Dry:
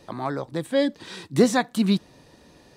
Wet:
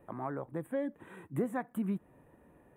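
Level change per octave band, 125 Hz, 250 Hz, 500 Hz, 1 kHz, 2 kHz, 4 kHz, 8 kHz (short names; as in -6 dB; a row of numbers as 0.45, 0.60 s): -11.5 dB, -13.0 dB, -13.5 dB, -12.0 dB, -15.5 dB, under -30 dB, -25.0 dB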